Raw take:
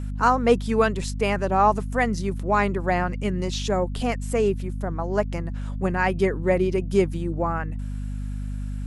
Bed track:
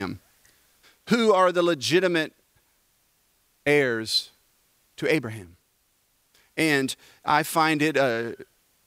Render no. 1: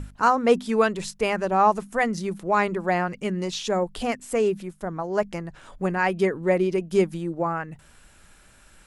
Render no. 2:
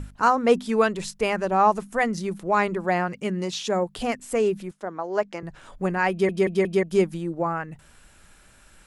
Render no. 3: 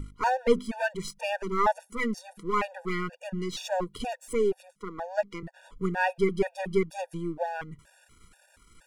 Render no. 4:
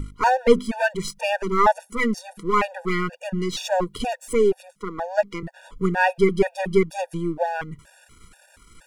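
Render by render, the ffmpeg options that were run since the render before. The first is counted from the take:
-af "bandreject=f=50:t=h:w=6,bandreject=f=100:t=h:w=6,bandreject=f=150:t=h:w=6,bandreject=f=200:t=h:w=6,bandreject=f=250:t=h:w=6"
-filter_complex "[0:a]asettb=1/sr,asplit=3[s0][s1][s2];[s0]atrim=end=2.854[s3];[s1]atrim=start=2.85:end=3.99,asetpts=PTS-STARTPTS,afade=t=in:d=0.004:c=qsin,afade=t=out:st=1.136:d=0.004:c=qsin,highpass=53[s4];[s2]atrim=start=3.986[s5];[s3][s4]acrossfade=d=0.004:c1=hsin:c2=qsin[s6];[s6][s5]acrossfade=d=0.004:c1=qsin:c2=hsin,asettb=1/sr,asplit=3[s7][s8][s9];[s7]atrim=end=4.714[s10];[s8]atrim=start=4.71:end=5.43,asetpts=PTS-STARTPTS,afade=t=in:d=0.004:c=qsin,afade=t=out:st=0.716:d=0.004:c=qsin,acrossover=split=230 7500:gain=0.0891 1 0.178[s11][s12][s13];[s11][s12][s13]amix=inputs=3:normalize=0[s14];[s9]atrim=start=5.426[s15];[s10][s14]acrossfade=d=0.004:c1=hsin:c2=qsin[s16];[s16][s15]acrossfade=d=0.004:c1=qsin:c2=hsin,asplit=5[s17][s18][s19][s20][s21];[s17]atrim=end=6.292[s22];[s18]atrim=start=6.108:end=6.292[s23];[s19]atrim=start=6.108:end=6.292[s24];[s20]atrim=start=6.108:end=6.292[s25];[s21]atrim=start=6.828[s26];[s22][s23]acrossfade=d=0.004:c1=hsin:c2=hsin[s27];[s27][s24]acrossfade=d=0.004:c1=hsin:c2=hsin[s28];[s28][s25]acrossfade=d=0.004:c1=hsin:c2=hsin[s29];[s29][s26]acrossfade=d=0.004:c1=hsin:c2=hsin"
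-af "aeval=exprs='if(lt(val(0),0),0.447*val(0),val(0))':c=same,afftfilt=real='re*gt(sin(2*PI*2.1*pts/sr)*(1-2*mod(floor(b*sr/1024/480),2)),0)':imag='im*gt(sin(2*PI*2.1*pts/sr)*(1-2*mod(floor(b*sr/1024/480),2)),0)':win_size=1024:overlap=0.75"
-af "volume=2.24"

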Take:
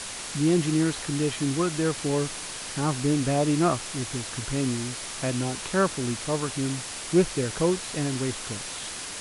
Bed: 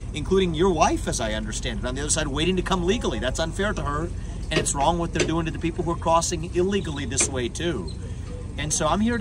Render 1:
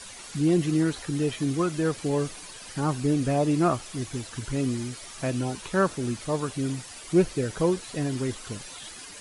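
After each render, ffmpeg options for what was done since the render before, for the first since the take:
-af "afftdn=nr=11:nf=-36"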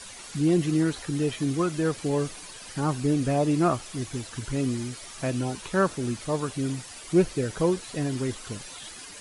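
-af anull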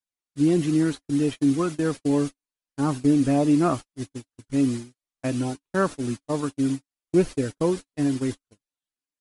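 -af "agate=range=0.002:threshold=0.0355:ratio=16:detection=peak,equalizer=f=280:t=o:w=0.23:g=9"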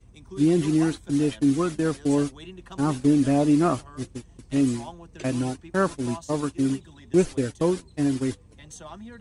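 -filter_complex "[1:a]volume=0.106[s0];[0:a][s0]amix=inputs=2:normalize=0"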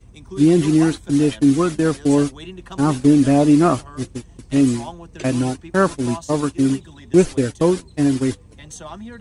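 -af "volume=2.11"

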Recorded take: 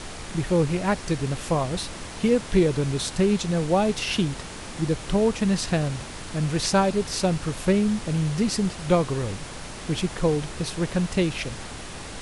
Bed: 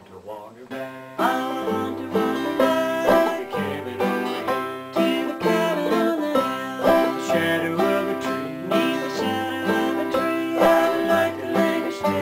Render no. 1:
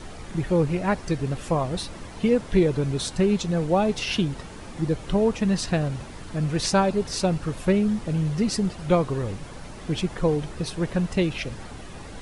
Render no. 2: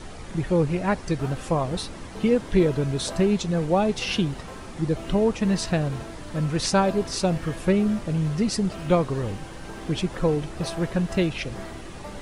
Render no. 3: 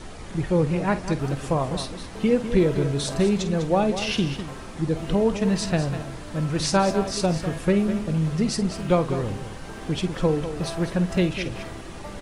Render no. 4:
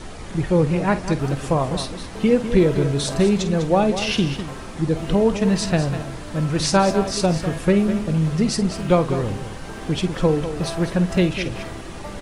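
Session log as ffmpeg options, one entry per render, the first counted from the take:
-af "afftdn=nr=9:nf=-38"
-filter_complex "[1:a]volume=0.1[s0];[0:a][s0]amix=inputs=2:normalize=0"
-filter_complex "[0:a]asplit=2[s0][s1];[s1]adelay=50,volume=0.211[s2];[s0][s2]amix=inputs=2:normalize=0,aecho=1:1:201:0.299"
-af "volume=1.5"

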